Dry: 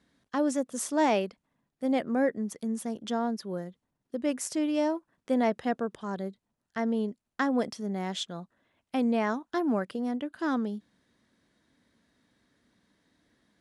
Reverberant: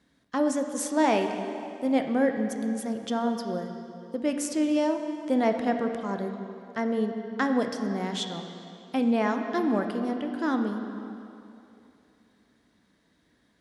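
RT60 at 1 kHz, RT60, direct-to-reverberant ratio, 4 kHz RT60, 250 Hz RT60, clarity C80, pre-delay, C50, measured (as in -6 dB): 2.7 s, 2.8 s, 5.0 dB, 2.4 s, 2.9 s, 7.0 dB, 12 ms, 6.0 dB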